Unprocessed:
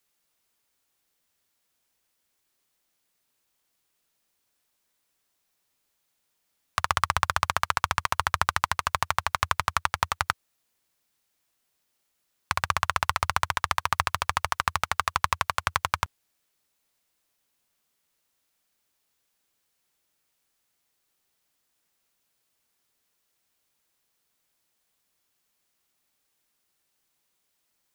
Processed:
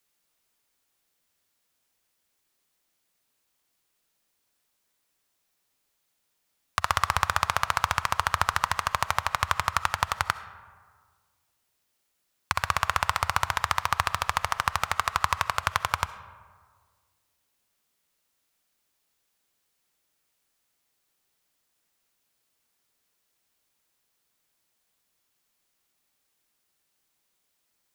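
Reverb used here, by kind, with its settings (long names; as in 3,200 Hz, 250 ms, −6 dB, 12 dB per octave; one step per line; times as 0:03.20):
comb and all-pass reverb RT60 1.7 s, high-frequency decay 0.45×, pre-delay 25 ms, DRR 13.5 dB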